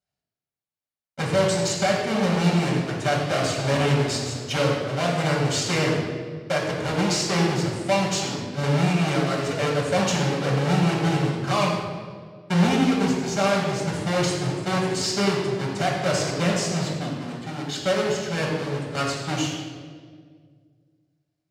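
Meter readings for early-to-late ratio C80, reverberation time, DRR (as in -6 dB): 3.0 dB, 1.9 s, -3.5 dB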